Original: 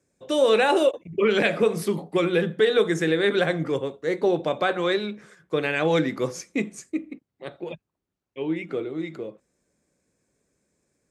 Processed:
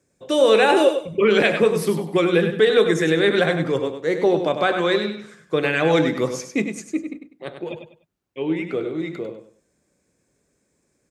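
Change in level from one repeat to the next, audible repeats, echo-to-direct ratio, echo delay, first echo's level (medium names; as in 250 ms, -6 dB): -11.5 dB, 3, -7.5 dB, 99 ms, -8.0 dB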